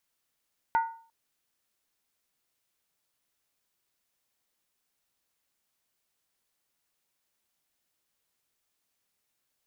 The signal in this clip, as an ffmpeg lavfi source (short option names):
-f lavfi -i "aevalsrc='0.112*pow(10,-3*t/0.45)*sin(2*PI*912*t)+0.0376*pow(10,-3*t/0.356)*sin(2*PI*1453.7*t)+0.0126*pow(10,-3*t/0.308)*sin(2*PI*1948*t)+0.00422*pow(10,-3*t/0.297)*sin(2*PI*2094*t)+0.00141*pow(10,-3*t/0.276)*sin(2*PI*2419.5*t)':d=0.35:s=44100"